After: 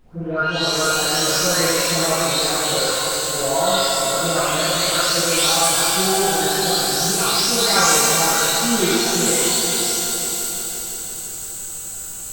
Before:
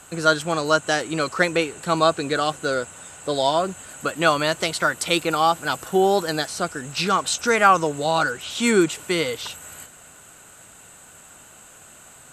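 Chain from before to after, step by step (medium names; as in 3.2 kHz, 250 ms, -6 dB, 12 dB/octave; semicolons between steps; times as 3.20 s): delay that grows with frequency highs late, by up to 621 ms; resonant high shelf 3.5 kHz +10.5 dB, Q 1.5; in parallel at -2.5 dB: compression, threshold -28 dBFS, peak gain reduction 16 dB; on the sum: added noise brown -46 dBFS; on a send: multi-head delay 171 ms, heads second and third, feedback 56%, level -9 dB; on the sum: pitch-shifted reverb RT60 1.6 s, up +12 st, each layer -8 dB, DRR -8.5 dB; trim -9.5 dB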